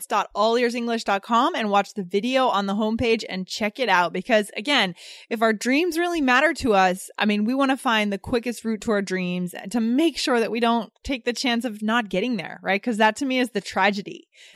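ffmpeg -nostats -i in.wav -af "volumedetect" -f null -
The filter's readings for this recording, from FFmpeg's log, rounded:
mean_volume: -22.6 dB
max_volume: -6.1 dB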